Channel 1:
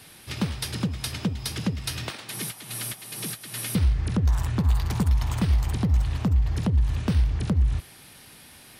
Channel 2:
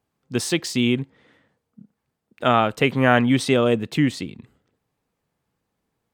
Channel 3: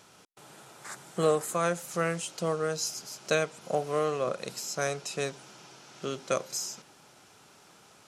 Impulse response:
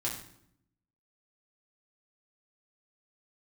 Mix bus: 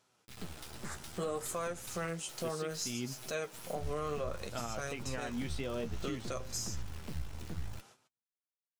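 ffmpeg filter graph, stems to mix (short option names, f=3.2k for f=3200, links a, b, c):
-filter_complex "[0:a]acrusher=bits=3:dc=4:mix=0:aa=0.000001,volume=-11dB[a];[1:a]adelay=2100,volume=-12.5dB[b];[2:a]volume=0.5dB[c];[a][b][c]amix=inputs=3:normalize=0,agate=range=-13dB:threshold=-53dB:ratio=16:detection=peak,flanger=delay=7.8:depth=6.1:regen=42:speed=0.62:shape=sinusoidal,alimiter=level_in=3dB:limit=-24dB:level=0:latency=1:release=192,volume=-3dB"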